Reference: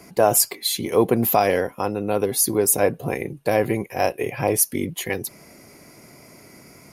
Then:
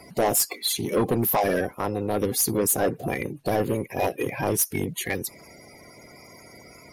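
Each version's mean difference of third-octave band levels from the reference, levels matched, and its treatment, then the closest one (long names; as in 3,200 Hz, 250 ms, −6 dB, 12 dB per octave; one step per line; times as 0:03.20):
3.5 dB: spectral magnitudes quantised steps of 30 dB
soft clipping −16 dBFS, distortion −11 dB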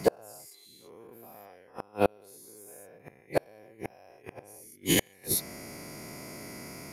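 15.0 dB: every bin's largest magnitude spread in time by 240 ms
gate with flip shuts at −7 dBFS, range −37 dB
level −2 dB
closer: first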